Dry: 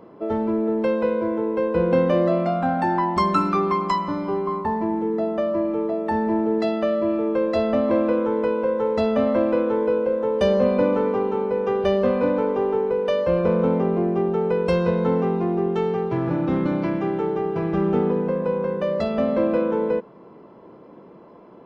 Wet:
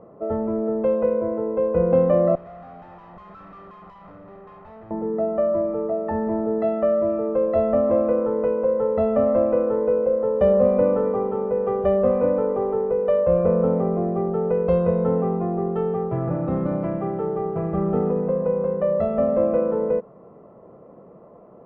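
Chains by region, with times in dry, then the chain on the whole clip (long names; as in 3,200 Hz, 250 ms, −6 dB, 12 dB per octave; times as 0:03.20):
0:02.35–0:04.91: parametric band 360 Hz −7.5 dB 2.9 octaves + tube saturation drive 40 dB, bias 0.75 + highs frequency-modulated by the lows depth 0.3 ms
whole clip: low-pass filter 1,100 Hz 12 dB per octave; comb filter 1.6 ms, depth 50%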